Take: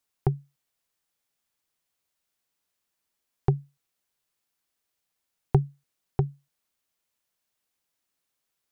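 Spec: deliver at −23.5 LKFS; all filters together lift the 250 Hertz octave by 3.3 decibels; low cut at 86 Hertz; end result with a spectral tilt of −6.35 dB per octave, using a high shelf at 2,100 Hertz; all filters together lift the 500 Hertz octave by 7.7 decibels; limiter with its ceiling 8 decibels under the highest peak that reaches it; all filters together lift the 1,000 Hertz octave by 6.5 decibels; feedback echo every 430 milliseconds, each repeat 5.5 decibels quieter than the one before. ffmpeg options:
ffmpeg -i in.wav -af "highpass=86,equalizer=frequency=250:width_type=o:gain=6,equalizer=frequency=500:width_type=o:gain=7.5,equalizer=frequency=1000:width_type=o:gain=6.5,highshelf=frequency=2100:gain=-8.5,alimiter=limit=-11.5dB:level=0:latency=1,aecho=1:1:430|860|1290|1720|2150|2580|3010:0.531|0.281|0.149|0.079|0.0419|0.0222|0.0118,volume=10dB" out.wav

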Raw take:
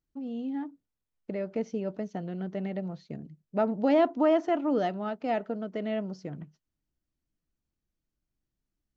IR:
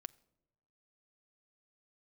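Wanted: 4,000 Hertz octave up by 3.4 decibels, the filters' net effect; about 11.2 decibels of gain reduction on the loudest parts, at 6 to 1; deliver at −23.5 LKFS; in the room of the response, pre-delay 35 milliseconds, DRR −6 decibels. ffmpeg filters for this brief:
-filter_complex "[0:a]equalizer=frequency=4000:width_type=o:gain=5,acompressor=threshold=-31dB:ratio=6,asplit=2[link_01][link_02];[1:a]atrim=start_sample=2205,adelay=35[link_03];[link_02][link_03]afir=irnorm=-1:irlink=0,volume=11dB[link_04];[link_01][link_04]amix=inputs=2:normalize=0,volume=7dB"

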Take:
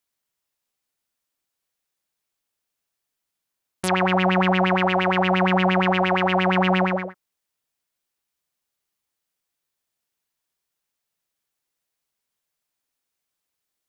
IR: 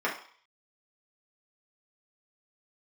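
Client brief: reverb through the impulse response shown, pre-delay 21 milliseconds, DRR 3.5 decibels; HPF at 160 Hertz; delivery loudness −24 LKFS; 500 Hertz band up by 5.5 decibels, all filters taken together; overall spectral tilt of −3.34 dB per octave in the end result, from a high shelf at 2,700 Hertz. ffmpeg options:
-filter_complex "[0:a]highpass=160,equalizer=frequency=500:width_type=o:gain=7,highshelf=frequency=2700:gain=5.5,asplit=2[link_01][link_02];[1:a]atrim=start_sample=2205,adelay=21[link_03];[link_02][link_03]afir=irnorm=-1:irlink=0,volume=-14.5dB[link_04];[link_01][link_04]amix=inputs=2:normalize=0,volume=-8dB"

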